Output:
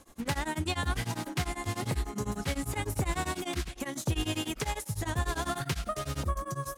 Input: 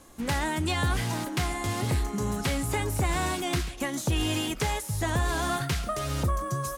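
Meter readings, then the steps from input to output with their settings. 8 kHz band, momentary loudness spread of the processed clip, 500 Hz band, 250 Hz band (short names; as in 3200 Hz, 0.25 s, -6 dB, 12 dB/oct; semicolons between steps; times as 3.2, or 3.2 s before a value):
-4.5 dB, 3 LU, -4.5 dB, -4.5 dB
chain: beating tremolo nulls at 10 Hz; gain -1.5 dB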